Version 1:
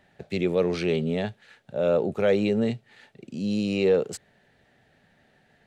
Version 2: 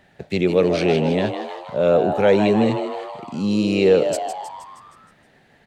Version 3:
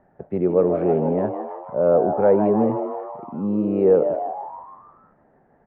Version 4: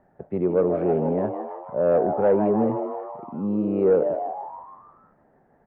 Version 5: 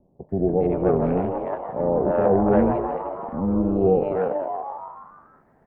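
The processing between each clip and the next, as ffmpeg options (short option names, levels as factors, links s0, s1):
-filter_complex "[0:a]asplit=8[s0][s1][s2][s3][s4][s5][s6][s7];[s1]adelay=157,afreqshift=120,volume=0.376[s8];[s2]adelay=314,afreqshift=240,volume=0.211[s9];[s3]adelay=471,afreqshift=360,volume=0.117[s10];[s4]adelay=628,afreqshift=480,volume=0.0661[s11];[s5]adelay=785,afreqshift=600,volume=0.0372[s12];[s6]adelay=942,afreqshift=720,volume=0.0207[s13];[s7]adelay=1099,afreqshift=840,volume=0.0116[s14];[s0][s8][s9][s10][s11][s12][s13][s14]amix=inputs=8:normalize=0,volume=2"
-af "lowpass=f=1200:w=0.5412,lowpass=f=1200:w=1.3066,equalizer=f=100:t=o:w=2:g=-5.5"
-af "acontrast=38,volume=0.422"
-filter_complex "[0:a]acrossover=split=540[s0][s1];[s1]adelay=290[s2];[s0][s2]amix=inputs=2:normalize=0,tremolo=f=290:d=0.667,volume=2"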